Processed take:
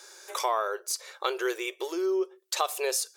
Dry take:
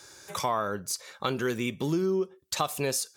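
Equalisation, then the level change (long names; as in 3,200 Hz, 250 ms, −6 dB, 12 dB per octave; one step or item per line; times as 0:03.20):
linear-phase brick-wall high-pass 340 Hz
+1.0 dB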